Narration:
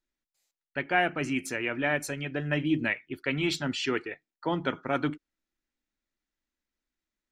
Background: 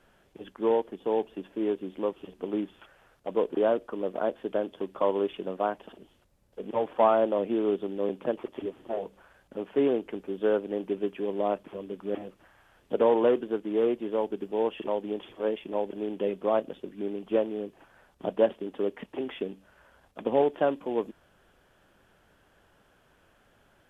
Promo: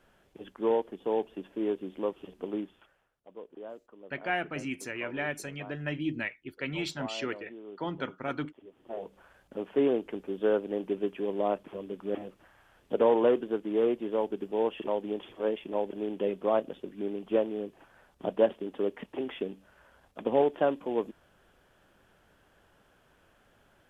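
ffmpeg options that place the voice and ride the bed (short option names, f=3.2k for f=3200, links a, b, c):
-filter_complex "[0:a]adelay=3350,volume=-5.5dB[a];[1:a]volume=16dB,afade=t=out:st=2.4:d=0.72:silence=0.141254,afade=t=in:st=8.66:d=0.6:silence=0.125893[b];[a][b]amix=inputs=2:normalize=0"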